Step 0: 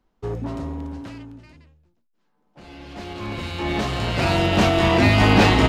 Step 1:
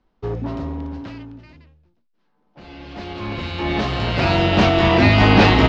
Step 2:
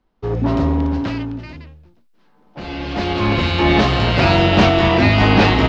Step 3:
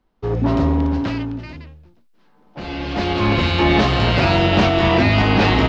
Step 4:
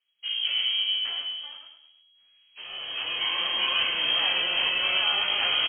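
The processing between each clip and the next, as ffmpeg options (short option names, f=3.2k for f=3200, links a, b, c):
-af "lowpass=f=5.3k:w=0.5412,lowpass=f=5.3k:w=1.3066,volume=2.5dB"
-af "dynaudnorm=f=150:g=5:m=12.5dB,volume=-1dB"
-af "alimiter=limit=-6dB:level=0:latency=1:release=201"
-af "flanger=delay=15.5:depth=6.1:speed=2.7,lowpass=f=2.8k:t=q:w=0.5098,lowpass=f=2.8k:t=q:w=0.6013,lowpass=f=2.8k:t=q:w=0.9,lowpass=f=2.8k:t=q:w=2.563,afreqshift=-3300,aecho=1:1:104|208|312|416:0.398|0.151|0.0575|0.0218,volume=-8dB"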